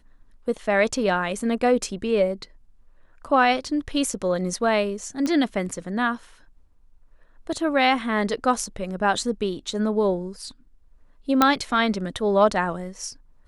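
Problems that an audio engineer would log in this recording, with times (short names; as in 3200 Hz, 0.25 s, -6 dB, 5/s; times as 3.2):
5.26 pop -14 dBFS
11.42 pop -3 dBFS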